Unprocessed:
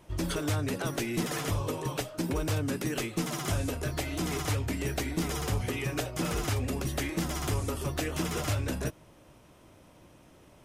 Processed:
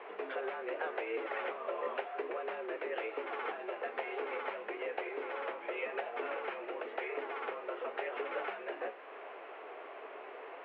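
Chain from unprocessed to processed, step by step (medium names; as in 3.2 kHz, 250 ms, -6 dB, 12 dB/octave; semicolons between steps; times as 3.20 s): compression 12:1, threshold -42 dBFS, peak gain reduction 17 dB; added noise pink -59 dBFS; flange 0.84 Hz, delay 7.9 ms, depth 8.1 ms, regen +69%; mistuned SSB +100 Hz 300–2500 Hz; trim +15 dB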